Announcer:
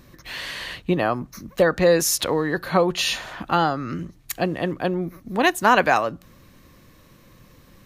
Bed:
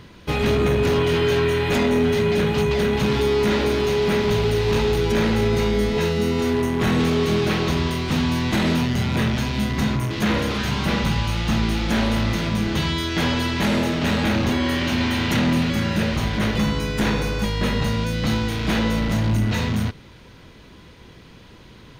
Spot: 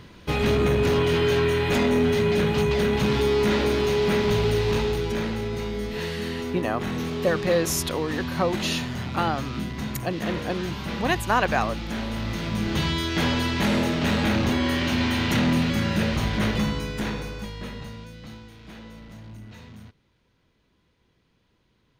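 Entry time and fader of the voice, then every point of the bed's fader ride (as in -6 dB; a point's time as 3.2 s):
5.65 s, -5.5 dB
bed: 4.57 s -2 dB
5.43 s -9.5 dB
12.08 s -9.5 dB
12.8 s -2 dB
16.48 s -2 dB
18.51 s -22 dB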